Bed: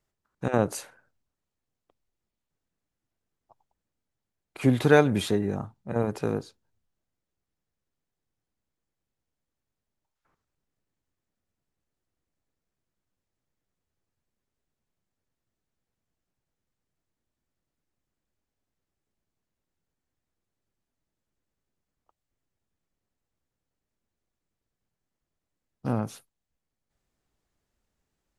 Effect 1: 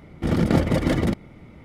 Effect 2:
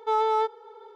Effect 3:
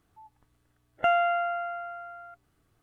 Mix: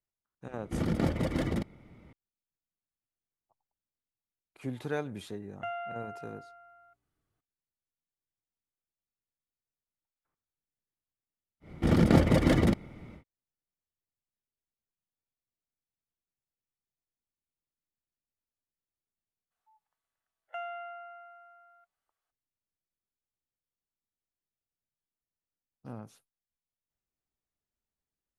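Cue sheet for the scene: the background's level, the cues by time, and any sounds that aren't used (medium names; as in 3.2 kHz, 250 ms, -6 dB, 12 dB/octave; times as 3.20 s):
bed -15.5 dB
0.49 s: add 1 -9.5 dB
4.59 s: add 3 -14 dB
11.60 s: add 1 -2.5 dB, fades 0.10 s
19.50 s: add 3 -15 dB, fades 0.02 s + high-pass 610 Hz 24 dB/octave
not used: 2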